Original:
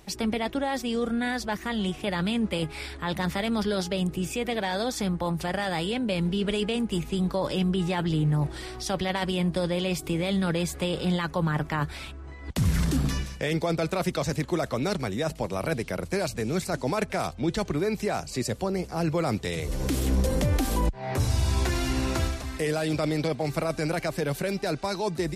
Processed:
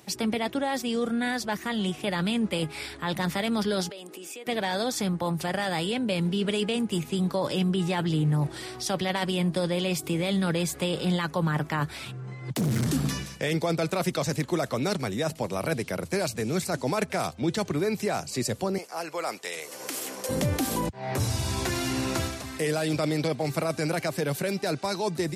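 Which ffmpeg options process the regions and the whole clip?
-filter_complex "[0:a]asettb=1/sr,asplit=3[a][b][c];[a]atrim=end=3.894[d];[b]atrim=start=3.89:end=4.47,asetpts=PTS-STARTPTS,afade=t=in:d=0.004:c=qsin,afade=t=out:st=0.576:d=0.004:c=qsin,highpass=f=310:w=0.5412,highpass=f=310:w=1.3066,acompressor=threshold=-39dB:ratio=5:attack=3.2:release=140:knee=1:detection=peak[e];[c]atrim=start=4.466[f];[d][e]acrossfade=d=0.004:c1=hsin:c2=qsin[g];[g][f]acrossfade=d=0.004:c1=qsin:c2=hsin,asettb=1/sr,asplit=3[h][i][j];[h]atrim=end=12.054[k];[i]atrim=start=12.05:end=12.87,asetpts=PTS-STARTPTS,afade=t=in:d=0.004:c=qsin,afade=t=out:st=0.816:d=0.004:c=qsin,equalizer=f=90:w=0.93:g=4.5,asoftclip=type=hard:threshold=-23dB,afreqshift=59[l];[j]atrim=start=12.866[m];[k][l]acrossfade=d=0.004:c1=hsin:c2=qsin[n];[n][m]acrossfade=d=0.004:c1=qsin:c2=hsin,asettb=1/sr,asplit=3[o][p][q];[o]atrim=end=18.784[r];[p]atrim=start=18.78:end=20.29,asetpts=PTS-STARTPTS,afade=t=in:d=0.004:c=qsin,afade=t=out:st=1.506:d=0.004:c=qsin,highpass=620,equalizer=f=3.7k:t=o:w=0.31:g=-5[s];[q]atrim=start=20.286[t];[r][s]acrossfade=d=0.004:c1=hsin:c2=qsin[u];[u][t]acrossfade=d=0.004:c1=qsin:c2=hsin,highpass=f=92:w=0.5412,highpass=f=92:w=1.3066,highshelf=f=5.8k:g=4.5"

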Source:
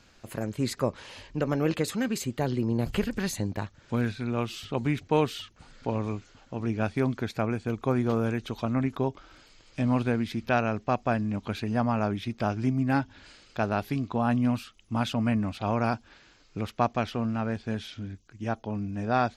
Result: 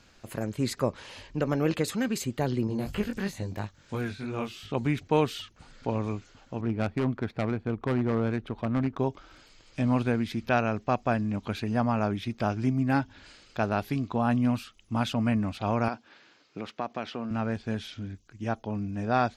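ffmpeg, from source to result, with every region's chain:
-filter_complex "[0:a]asettb=1/sr,asplit=3[a][b][c];[a]atrim=end=2.674[d];[b]atrim=start=2.67:end=4.72,asetpts=PTS-STARTPTS,afade=t=in:d=0.004:c=qsin,afade=t=out:st=2.046:d=0.004:c=qsin,flanger=delay=19:depth=3.3:speed=3,acrossover=split=2900[e][f];[f]acompressor=threshold=-53dB:ratio=4:attack=1:release=60[g];[e][g]amix=inputs=2:normalize=0,highshelf=f=3.7k:g=7.5[h];[c]atrim=start=4.716[i];[d][h]acrossfade=d=0.004:c1=hsin:c2=qsin[j];[j][i]acrossfade=d=0.004:c1=qsin:c2=hsin,asettb=1/sr,asplit=3[k][l][m];[k]atrim=end=6.614[n];[l]atrim=start=6.61:end=8.99,asetpts=PTS-STARTPTS,afade=t=in:d=0.004:c=qsin,afade=t=out:st=2.376:d=0.004:c=qsin,aeval=exprs='0.106*(abs(mod(val(0)/0.106+3,4)-2)-1)':c=same,adynamicsmooth=sensitivity=3.5:basefreq=1.4k[o];[m]atrim=start=8.986[p];[n][o]acrossfade=d=0.004:c1=hsin:c2=qsin[q];[q][p]acrossfade=d=0.004:c1=qsin:c2=hsin,asettb=1/sr,asplit=3[r][s][t];[r]atrim=end=15.884[u];[s]atrim=start=15.88:end=17.31,asetpts=PTS-STARTPTS,afade=t=in:d=0.004:c=qsin,afade=t=out:st=1.426:d=0.004:c=qsin,acompressor=threshold=-28dB:ratio=3:attack=3.2:release=140:knee=1:detection=peak,highpass=210,lowpass=5.4k[v];[t]atrim=start=17.306[w];[u][v]acrossfade=d=0.004:c1=hsin:c2=qsin[x];[x][w]acrossfade=d=0.004:c1=qsin:c2=hsin"

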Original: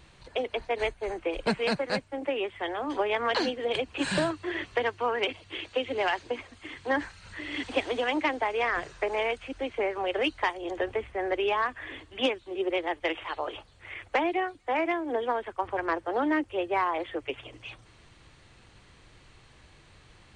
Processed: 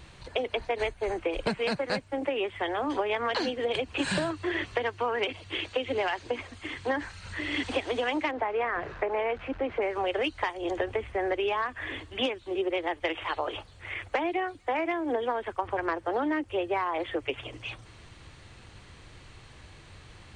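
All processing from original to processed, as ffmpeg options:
-filter_complex "[0:a]asettb=1/sr,asplit=3[a][b][c];[a]atrim=end=8.314[d];[b]atrim=start=8.31:end=9.82,asetpts=PTS-STARTPTS,afade=t=in:d=0.004:c=qsin,afade=t=out:st=1.506:d=0.004:c=qsin,aeval=exprs='val(0)+0.5*0.00841*sgn(val(0))':c=same,lowpass=1.8k,lowshelf=f=140:g=-6.5[e];[c]atrim=start=9.816[f];[d][e]acrossfade=d=0.004:c1=hsin:c2=qsin[g];[g][f]acrossfade=d=0.004:c1=qsin:c2=hsin,acompressor=threshold=-30dB:ratio=6,equalizer=f=88:w=2.1:g=4.5,volume=4.5dB"

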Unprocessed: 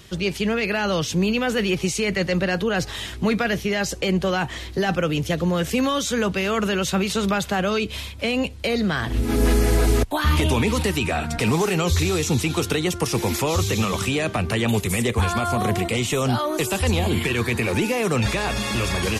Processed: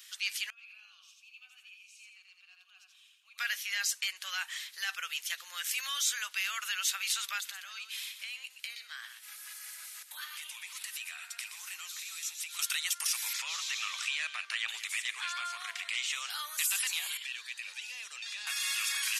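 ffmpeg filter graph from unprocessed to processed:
-filter_complex "[0:a]asettb=1/sr,asplit=3[a][b][c];[a]atrim=end=0.504[d];[b]atrim=start=0.5:end=3.38,asetpts=PTS-STARTPTS,afade=t=in:d=0.004:c=qsin,afade=t=out:st=2.876:d=0.004:c=qsin,asplit=3[e][f][g];[e]bandpass=f=730:t=q:w=8,volume=0dB[h];[f]bandpass=f=1.09k:t=q:w=8,volume=-6dB[i];[g]bandpass=f=2.44k:t=q:w=8,volume=-9dB[j];[h][i][j]amix=inputs=3:normalize=0,aderivative,aecho=1:1:85|170|255|340:0.708|0.227|0.0725|0.0232,atrim=end_sample=127008[k];[c]atrim=start=3.376[l];[d][k]acrossfade=d=0.004:c1=hsin:c2=qsin[m];[m][l]acrossfade=d=0.004:c1=qsin:c2=hsin,asettb=1/sr,asplit=3[n][o][p];[n]atrim=end=7.404[q];[o]atrim=start=7.4:end=12.59,asetpts=PTS-STARTPTS,afade=t=in:d=0.004:c=qsin,afade=t=out:st=5.186:d=0.004:c=qsin,acompressor=threshold=-29dB:ratio=5:attack=3.2:release=140:knee=1:detection=peak,aecho=1:1:122:0.335,atrim=end_sample=228879[r];[p]atrim=start=12.586[s];[q][r]acrossfade=d=0.004:c1=hsin:c2=qsin[t];[t][s]acrossfade=d=0.004:c1=qsin:c2=hsin,asettb=1/sr,asplit=3[u][v][w];[u]atrim=end=13.334[x];[v]atrim=start=13.33:end=16.3,asetpts=PTS-STARTPTS,afade=t=in:d=0.004:c=qsin,afade=t=out:st=2.966:d=0.004:c=qsin,lowpass=5k,aecho=1:1:183:0.211,atrim=end_sample=130977[y];[w]atrim=start=16.296[z];[x][y]acrossfade=d=0.004:c1=hsin:c2=qsin[aa];[aa][z]acrossfade=d=0.004:c1=qsin:c2=hsin,asettb=1/sr,asplit=3[ab][ac][ad];[ab]atrim=end=17.174[ae];[ac]atrim=start=17.17:end=18.47,asetpts=PTS-STARTPTS,afade=t=in:d=0.004:c=qsin,afade=t=out:st=1.296:d=0.004:c=qsin,lowpass=4.3k,equalizer=f=1.3k:w=0.7:g=-12.5,bandreject=f=2.2k:w=11[af];[ad]atrim=start=18.466[ag];[ae][af]acrossfade=d=0.004:c1=hsin:c2=qsin[ah];[ah][ag]acrossfade=d=0.004:c1=qsin:c2=hsin,highpass=f=1.5k:w=0.5412,highpass=f=1.5k:w=1.3066,highshelf=f=6.8k:g=10.5,volume=-6.5dB"

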